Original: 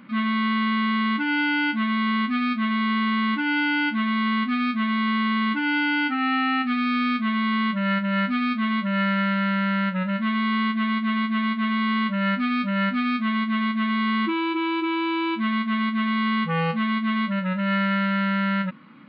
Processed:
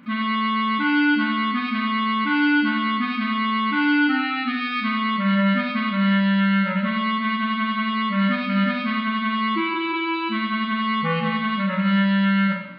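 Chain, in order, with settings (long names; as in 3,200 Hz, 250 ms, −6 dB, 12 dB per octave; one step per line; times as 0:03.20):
phase-vocoder stretch with locked phases 0.67×
four-comb reverb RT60 0.9 s, combs from 30 ms, DRR 0.5 dB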